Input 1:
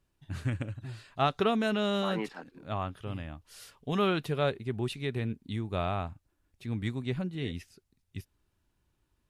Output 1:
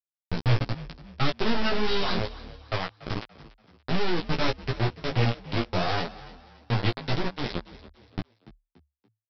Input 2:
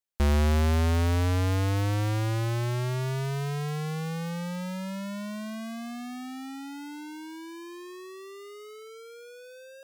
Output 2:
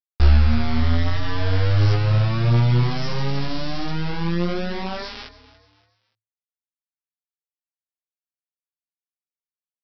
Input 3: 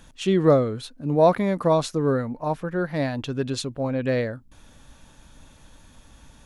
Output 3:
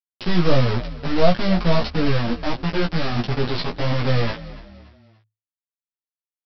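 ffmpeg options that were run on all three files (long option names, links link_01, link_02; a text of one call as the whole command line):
ffmpeg -i in.wav -filter_complex "[0:a]aeval=exprs='if(lt(val(0),0),0.447*val(0),val(0))':channel_layout=same,bass=frequency=250:gain=12,treble=frequency=4000:gain=12,aresample=11025,acrusher=bits=3:mix=0:aa=0.000001,aresample=44100,flanger=delay=6.9:depth=5.5:regen=1:speed=1.5:shape=sinusoidal,asplit=2[link_01][link_02];[link_02]adelay=17,volume=-4dB[link_03];[link_01][link_03]amix=inputs=2:normalize=0,asplit=4[link_04][link_05][link_06][link_07];[link_05]adelay=287,afreqshift=36,volume=-18dB[link_08];[link_06]adelay=574,afreqshift=72,volume=-26.6dB[link_09];[link_07]adelay=861,afreqshift=108,volume=-35.3dB[link_10];[link_04][link_08][link_09][link_10]amix=inputs=4:normalize=0" out.wav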